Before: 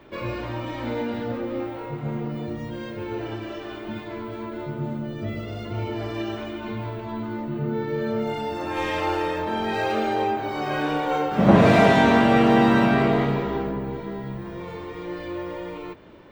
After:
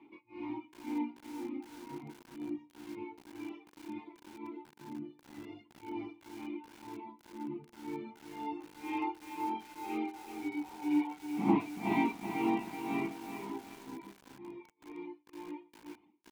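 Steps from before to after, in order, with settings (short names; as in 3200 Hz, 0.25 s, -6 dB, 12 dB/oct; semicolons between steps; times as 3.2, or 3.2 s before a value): vowel filter u; high shelf 2100 Hz +4.5 dB; on a send: echo 0.118 s -13 dB; on the sum: tremolo 2 Hz, depth 96%; dynamic EQ 500 Hz, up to -6 dB, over -59 dBFS, Q 7.2; reverb removal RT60 1.6 s; doubler 20 ms -13.5 dB; spectral repair 10.16–11.06, 430–1300 Hz both; HPF 58 Hz 6 dB/oct; lo-fi delay 0.379 s, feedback 55%, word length 8-bit, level -7 dB; gain +1 dB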